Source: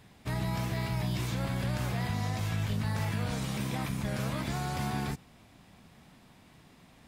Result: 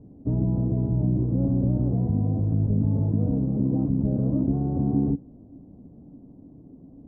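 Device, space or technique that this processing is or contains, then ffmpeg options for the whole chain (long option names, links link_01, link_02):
under water: -af "lowpass=frequency=520:width=0.5412,lowpass=frequency=520:width=1.3066,equalizer=frequency=280:width_type=o:width=0.32:gain=11.5,volume=8.5dB"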